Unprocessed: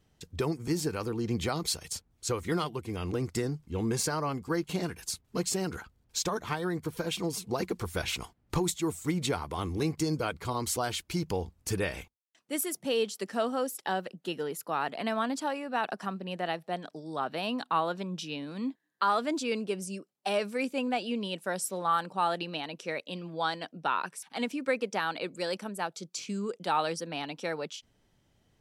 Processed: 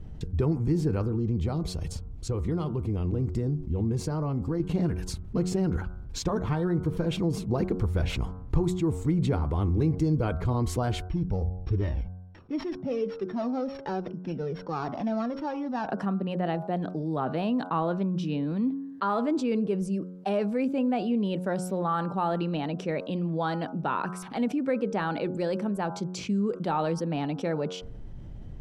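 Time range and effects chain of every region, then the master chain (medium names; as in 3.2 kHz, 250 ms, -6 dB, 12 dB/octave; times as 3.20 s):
1.01–4.60 s: peaking EQ 1.7 kHz -5 dB 0.82 oct + compression 2:1, threshold -38 dBFS
11.06–15.89 s: sorted samples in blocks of 8 samples + distance through air 160 m + Shepard-style flanger falling 1.3 Hz
whole clip: tilt EQ -4.5 dB/octave; de-hum 91.31 Hz, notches 17; level flattener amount 50%; trim -7.5 dB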